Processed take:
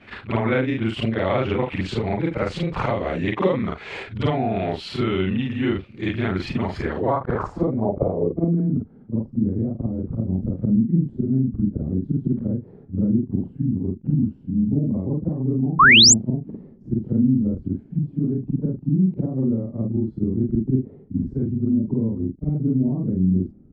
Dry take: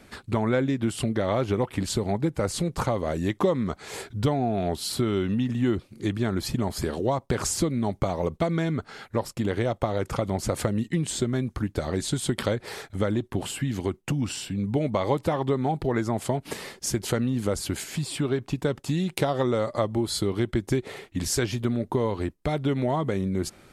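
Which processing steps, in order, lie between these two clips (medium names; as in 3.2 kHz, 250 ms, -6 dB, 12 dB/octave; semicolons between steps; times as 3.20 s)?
short-time spectra conjugated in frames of 107 ms; low-pass sweep 2.6 kHz -> 230 Hz, 6.68–8.67 s; painted sound rise, 15.79–16.14 s, 1–7.9 kHz -16 dBFS; trim +5.5 dB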